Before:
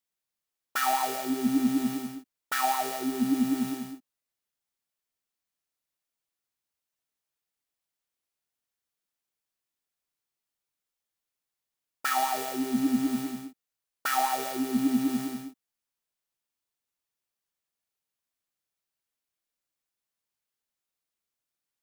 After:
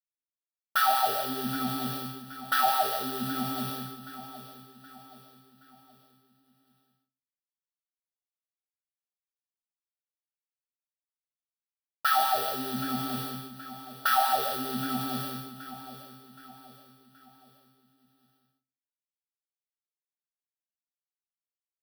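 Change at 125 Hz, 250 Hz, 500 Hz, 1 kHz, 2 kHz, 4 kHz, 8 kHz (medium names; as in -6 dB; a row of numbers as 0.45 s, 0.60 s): +5.5 dB, -8.5 dB, +1.0 dB, +3.0 dB, +2.5 dB, +4.5 dB, -2.5 dB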